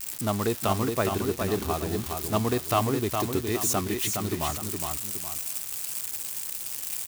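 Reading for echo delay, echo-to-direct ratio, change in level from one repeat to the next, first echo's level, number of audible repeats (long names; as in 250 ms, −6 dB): 414 ms, −4.5 dB, −8.0 dB, −5.0 dB, 2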